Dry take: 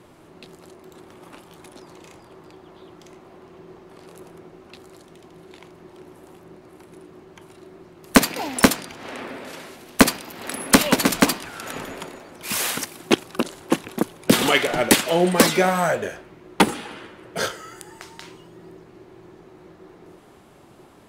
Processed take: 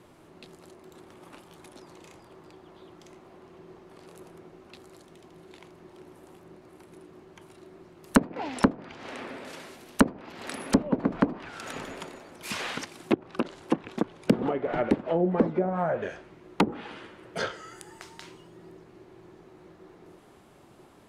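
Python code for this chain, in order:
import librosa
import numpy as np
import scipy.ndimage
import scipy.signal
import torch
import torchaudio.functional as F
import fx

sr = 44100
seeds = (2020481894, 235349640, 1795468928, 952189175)

y = fx.env_lowpass_down(x, sr, base_hz=520.0, full_db=-14.0)
y = F.gain(torch.from_numpy(y), -5.0).numpy()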